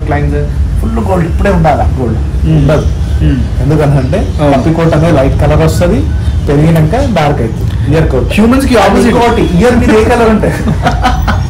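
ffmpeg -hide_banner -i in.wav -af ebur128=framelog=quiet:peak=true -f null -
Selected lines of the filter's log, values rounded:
Integrated loudness:
  I:          -8.9 LUFS
  Threshold: -18.8 LUFS
Loudness range:
  LRA:         2.5 LU
  Threshold: -28.7 LUFS
  LRA low:   -10.0 LUFS
  LRA high:   -7.5 LUFS
True peak:
  Peak:       -1.7 dBFS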